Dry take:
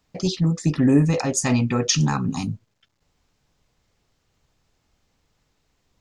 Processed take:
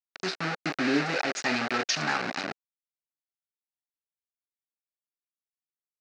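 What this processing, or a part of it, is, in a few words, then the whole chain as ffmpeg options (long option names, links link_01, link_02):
hand-held game console: -af "acrusher=bits=3:mix=0:aa=0.000001,highpass=470,equalizer=frequency=500:width_type=q:width=4:gain=-6,equalizer=frequency=1000:width_type=q:width=4:gain=-10,equalizer=frequency=1500:width_type=q:width=4:gain=3,equalizer=frequency=3300:width_type=q:width=4:gain=-9,lowpass=frequency=4700:width=0.5412,lowpass=frequency=4700:width=1.3066"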